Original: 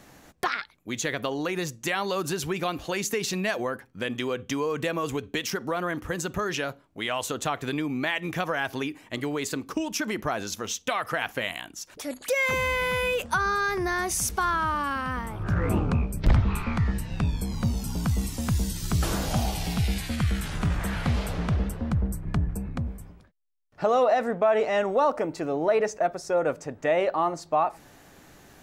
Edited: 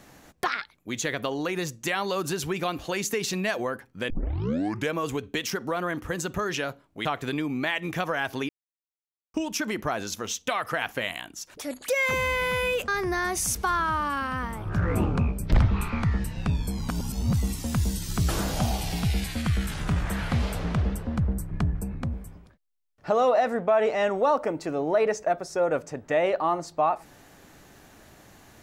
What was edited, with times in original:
4.1 tape start 0.85 s
7.05–7.45 cut
8.89–9.74 mute
13.28–13.62 cut
17.63–18.07 reverse

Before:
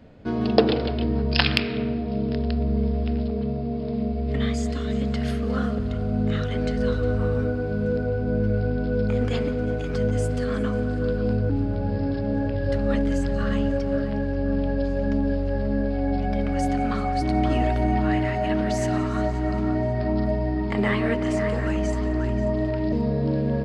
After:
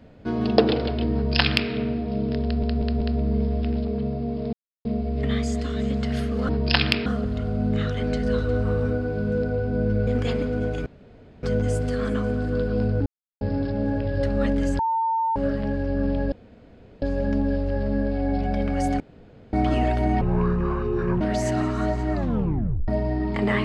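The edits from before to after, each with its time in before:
1.14–1.71 copy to 5.6
2.44 stutter 0.19 s, 4 plays
3.96 insert silence 0.32 s
8.61–9.13 cut
9.92 insert room tone 0.57 s
11.55–11.9 mute
13.28–13.85 bleep 903 Hz -20 dBFS
14.81 insert room tone 0.70 s
16.79–17.32 room tone
18–18.57 speed 57%
19.49 tape stop 0.75 s

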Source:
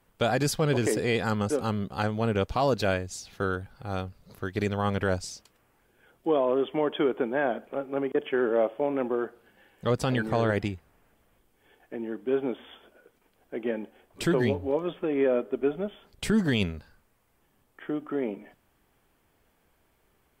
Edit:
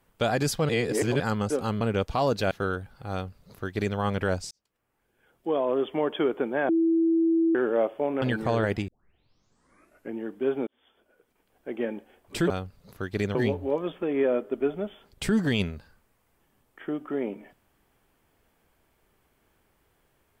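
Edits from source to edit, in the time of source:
0.69–1.2 reverse
1.81–2.22 cut
2.92–3.31 cut
3.92–4.77 copy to 14.36
5.31–6.62 fade in
7.49–8.35 bleep 329 Hz -19 dBFS
9.02–10.08 cut
10.74 tape start 1.29 s
12.53–13.61 fade in

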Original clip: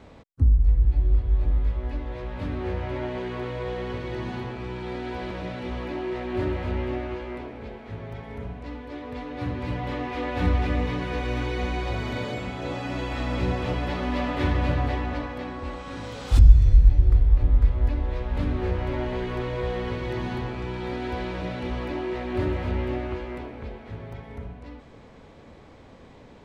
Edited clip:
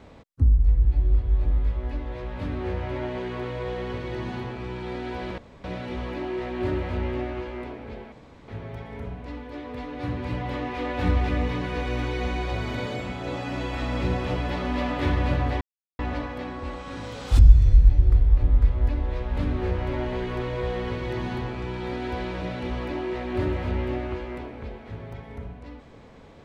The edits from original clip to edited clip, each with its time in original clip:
5.38 insert room tone 0.26 s
7.86 insert room tone 0.36 s
14.99 insert silence 0.38 s

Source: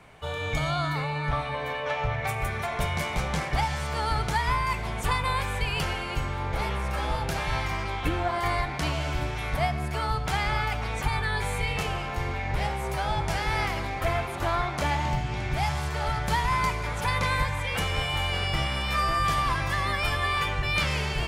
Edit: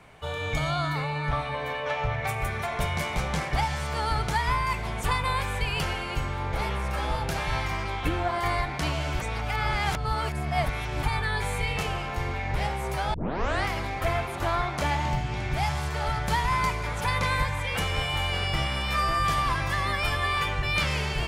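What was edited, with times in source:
9.2–11.03 reverse
13.14 tape start 0.52 s

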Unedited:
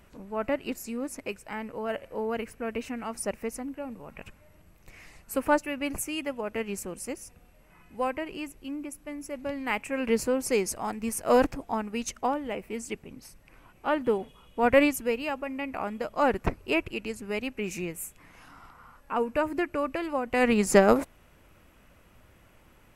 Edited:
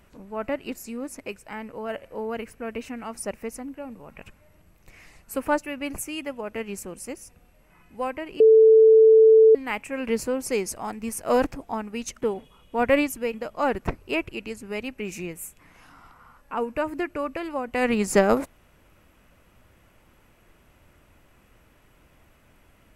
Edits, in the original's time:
8.4–9.55 bleep 442 Hz -10 dBFS
12.22–14.06 cut
15.18–15.93 cut

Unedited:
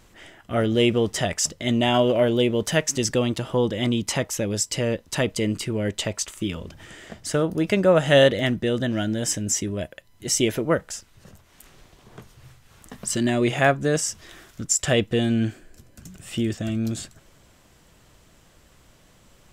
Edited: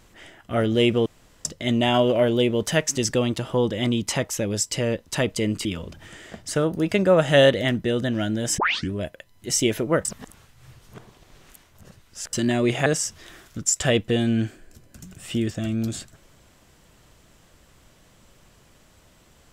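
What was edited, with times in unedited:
1.06–1.45 room tone
5.65–6.43 cut
9.36 tape start 0.33 s
10.83–13.11 reverse
13.64–13.89 cut

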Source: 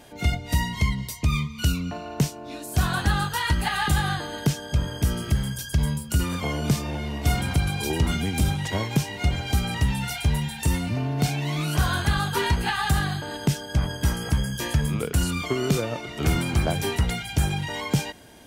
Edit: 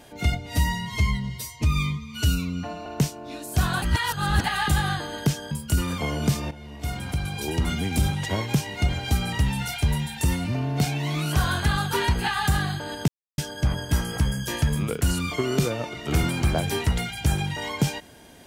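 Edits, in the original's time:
0.46–2.06 stretch 1.5×
3.02–3.64 reverse
4.71–5.93 cut
6.93–8.37 fade in, from -13.5 dB
13.5 insert silence 0.30 s

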